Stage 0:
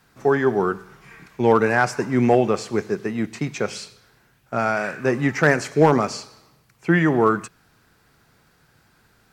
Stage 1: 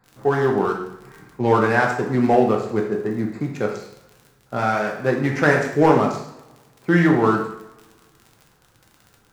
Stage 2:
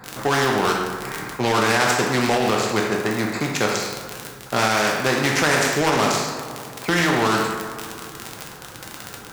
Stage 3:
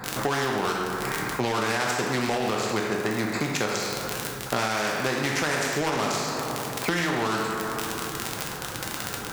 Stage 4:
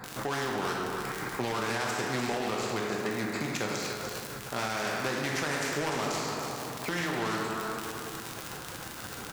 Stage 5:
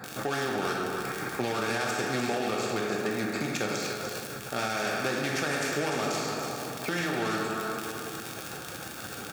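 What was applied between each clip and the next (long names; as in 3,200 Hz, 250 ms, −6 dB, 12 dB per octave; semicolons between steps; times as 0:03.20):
adaptive Wiener filter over 15 samples; surface crackle 41 per second −34 dBFS; coupled-rooms reverb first 0.68 s, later 1.9 s, from −23 dB, DRR 0 dB; level −1 dB
low-shelf EQ 100 Hz −11 dB; boost into a limiter +11 dB; every bin compressed towards the loudest bin 2 to 1; level −2.5 dB
downward compressor 4 to 1, threshold −30 dBFS, peak gain reduction 13 dB; level +5 dB
brickwall limiter −13 dBFS, peak gain reduction 8 dB; single-tap delay 296 ms −7 dB; level −6 dB
notch comb filter 1,000 Hz; level +2.5 dB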